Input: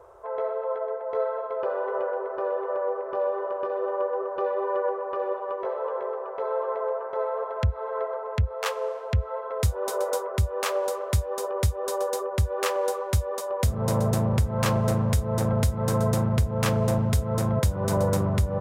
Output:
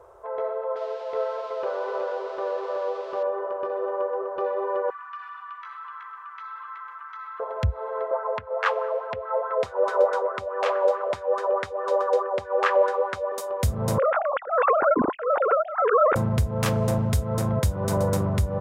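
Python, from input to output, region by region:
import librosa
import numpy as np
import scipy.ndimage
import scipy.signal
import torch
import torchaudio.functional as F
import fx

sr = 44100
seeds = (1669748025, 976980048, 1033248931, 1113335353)

y = fx.chain(x, sr, fx.crossing_spikes(level_db=-31.0),
    fx.lowpass(hz=4300.0, slope=24),
    fx.low_shelf(hz=180.0, db=-6.5), at=(0.76, 3.23))
y = fx.chain(y, sr, fx.ellip_highpass(hz=1200.0, order=4, stop_db=50),
    fx.env_flatten(amount_pct=50), at=(4.9, 7.4))
y = fx.chain(y, sr, fx.bandpass_edges(low_hz=370.0, high_hz=3100.0),
    fx.bell_lfo(hz=4.7, low_hz=500.0, high_hz=1700.0, db=12), at=(8.11, 13.32))
y = fx.chain(y, sr, fx.sine_speech(),
    fx.lowpass(hz=2400.0, slope=24),
    fx.peak_eq(hz=1400.0, db=12.5, octaves=0.36), at=(13.98, 16.16))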